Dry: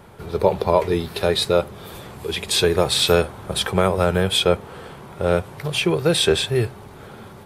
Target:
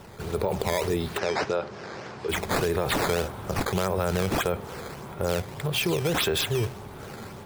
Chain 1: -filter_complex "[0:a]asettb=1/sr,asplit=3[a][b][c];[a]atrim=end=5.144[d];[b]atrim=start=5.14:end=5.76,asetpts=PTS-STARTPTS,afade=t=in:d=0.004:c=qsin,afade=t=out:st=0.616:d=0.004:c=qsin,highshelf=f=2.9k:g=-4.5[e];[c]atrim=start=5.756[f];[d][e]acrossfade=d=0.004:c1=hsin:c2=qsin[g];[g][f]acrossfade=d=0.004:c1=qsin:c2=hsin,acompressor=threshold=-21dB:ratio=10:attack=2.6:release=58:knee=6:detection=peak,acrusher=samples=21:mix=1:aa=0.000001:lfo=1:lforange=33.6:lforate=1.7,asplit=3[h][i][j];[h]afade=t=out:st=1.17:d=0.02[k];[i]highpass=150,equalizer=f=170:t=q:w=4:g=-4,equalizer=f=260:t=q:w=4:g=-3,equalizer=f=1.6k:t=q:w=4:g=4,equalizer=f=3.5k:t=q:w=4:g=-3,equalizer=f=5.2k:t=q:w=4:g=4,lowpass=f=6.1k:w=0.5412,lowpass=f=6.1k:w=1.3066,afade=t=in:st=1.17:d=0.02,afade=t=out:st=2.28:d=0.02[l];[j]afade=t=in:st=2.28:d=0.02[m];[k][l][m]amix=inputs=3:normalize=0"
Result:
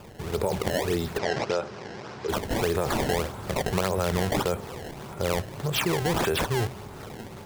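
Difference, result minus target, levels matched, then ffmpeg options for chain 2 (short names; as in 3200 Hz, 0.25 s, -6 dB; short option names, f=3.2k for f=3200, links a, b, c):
decimation with a swept rate: distortion +4 dB
-filter_complex "[0:a]asettb=1/sr,asplit=3[a][b][c];[a]atrim=end=5.144[d];[b]atrim=start=5.14:end=5.76,asetpts=PTS-STARTPTS,afade=t=in:d=0.004:c=qsin,afade=t=out:st=0.616:d=0.004:c=qsin,highshelf=f=2.9k:g=-4.5[e];[c]atrim=start=5.756[f];[d][e]acrossfade=d=0.004:c1=hsin:c2=qsin[g];[g][f]acrossfade=d=0.004:c1=qsin:c2=hsin,acompressor=threshold=-21dB:ratio=10:attack=2.6:release=58:knee=6:detection=peak,acrusher=samples=9:mix=1:aa=0.000001:lfo=1:lforange=14.4:lforate=1.7,asplit=3[h][i][j];[h]afade=t=out:st=1.17:d=0.02[k];[i]highpass=150,equalizer=f=170:t=q:w=4:g=-4,equalizer=f=260:t=q:w=4:g=-3,equalizer=f=1.6k:t=q:w=4:g=4,equalizer=f=3.5k:t=q:w=4:g=-3,equalizer=f=5.2k:t=q:w=4:g=4,lowpass=f=6.1k:w=0.5412,lowpass=f=6.1k:w=1.3066,afade=t=in:st=1.17:d=0.02,afade=t=out:st=2.28:d=0.02[l];[j]afade=t=in:st=2.28:d=0.02[m];[k][l][m]amix=inputs=3:normalize=0"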